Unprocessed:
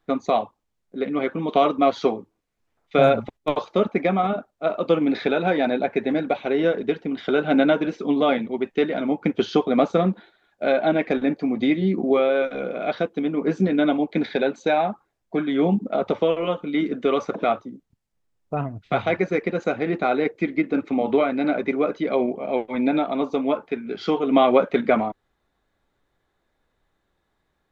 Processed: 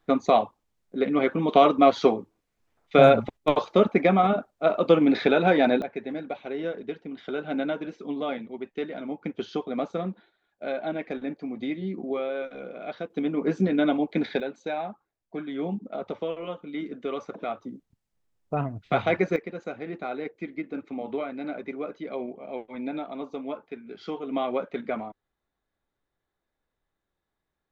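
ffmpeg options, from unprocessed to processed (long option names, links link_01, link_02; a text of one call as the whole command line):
ffmpeg -i in.wav -af "asetnsamples=nb_out_samples=441:pad=0,asendcmd='5.82 volume volume -10.5dB;13.1 volume volume -3dB;14.4 volume volume -10.5dB;17.62 volume volume -1.5dB;19.36 volume volume -11.5dB',volume=1dB" out.wav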